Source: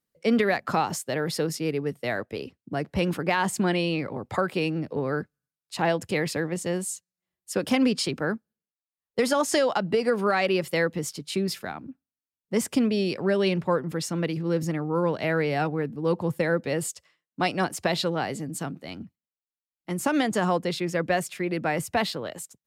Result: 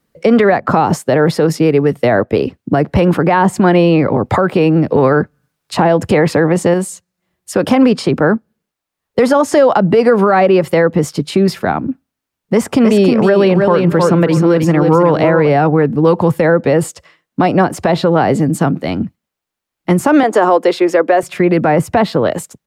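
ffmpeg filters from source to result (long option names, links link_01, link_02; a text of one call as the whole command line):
ffmpeg -i in.wav -filter_complex "[0:a]asettb=1/sr,asplit=3[link_01][link_02][link_03];[link_01]atrim=end=4.954[link_04];[link_02]atrim=start=4.95:end=6.74,asetpts=PTS-STARTPTS,afade=type=in:duration=0.004:curve=qsin,afade=type=out:start_time=1.786:duration=0.004:curve=qsin,acontrast=33[link_05];[link_03]atrim=start=6.736[link_06];[link_04][link_05]acrossfade=duration=0.004:curve1=hsin:curve2=qsin[link_07];[link_07][link_06]acrossfade=duration=0.004:curve1=qsin:curve2=hsin,asplit=3[link_08][link_09][link_10];[link_08]afade=type=out:start_time=12.65:duration=0.02[link_11];[link_09]aecho=1:1:313|626|939:0.473|0.0804|0.0137,afade=type=in:start_time=12.65:duration=0.02,afade=type=out:start_time=15.49:duration=0.02[link_12];[link_10]afade=type=in:start_time=15.49:duration=0.02[link_13];[link_11][link_12][link_13]amix=inputs=3:normalize=0,asettb=1/sr,asplit=3[link_14][link_15][link_16];[link_14]atrim=end=20.234[link_17];[link_15]atrim=start=20.23:end=21.23,asetpts=PTS-STARTPTS,afade=type=in:duration=0.004:curve=qsin,afade=type=out:start_time=0.996:duration=0.004:curve=qsin,highpass=frequency=320:width=0.5412,highpass=frequency=320:width=1.3066[link_18];[link_16]atrim=start=21.226[link_19];[link_17][link_18]acrossfade=duration=0.004:curve1=hsin:curve2=qsin[link_20];[link_20][link_19]acrossfade=duration=0.004:curve1=qsin:curve2=hsin,highshelf=frequency=3000:gain=-10,acrossover=split=620|1400[link_21][link_22][link_23];[link_21]acompressor=threshold=-30dB:ratio=4[link_24];[link_22]acompressor=threshold=-32dB:ratio=4[link_25];[link_23]acompressor=threshold=-48dB:ratio=4[link_26];[link_24][link_25][link_26]amix=inputs=3:normalize=0,alimiter=level_in=22.5dB:limit=-1dB:release=50:level=0:latency=1,volume=-1dB" out.wav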